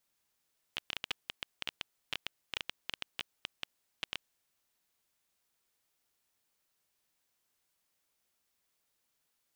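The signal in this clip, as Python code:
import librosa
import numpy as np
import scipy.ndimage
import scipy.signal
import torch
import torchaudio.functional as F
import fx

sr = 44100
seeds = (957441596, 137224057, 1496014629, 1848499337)

y = fx.geiger_clicks(sr, seeds[0], length_s=3.46, per_s=10.0, level_db=-17.5)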